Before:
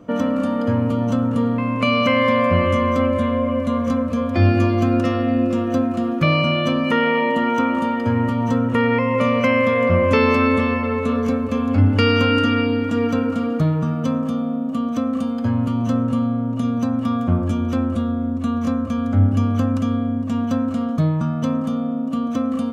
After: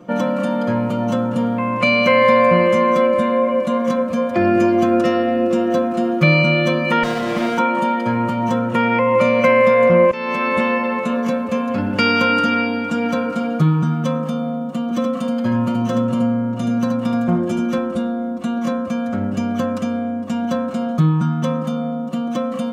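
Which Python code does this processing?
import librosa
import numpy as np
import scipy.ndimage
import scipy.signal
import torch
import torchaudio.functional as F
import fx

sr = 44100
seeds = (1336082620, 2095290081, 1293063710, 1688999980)

y = fx.running_max(x, sr, window=33, at=(7.03, 7.58))
y = fx.echo_single(y, sr, ms=76, db=-6.0, at=(14.83, 17.78))
y = fx.edit(y, sr, fx.fade_in_from(start_s=10.11, length_s=0.48, floor_db=-20.0), tone=tone)
y = fx.highpass(y, sr, hz=140.0, slope=6)
y = y + 1.0 * np.pad(y, (int(5.6 * sr / 1000.0), 0))[:len(y)]
y = y * librosa.db_to_amplitude(1.0)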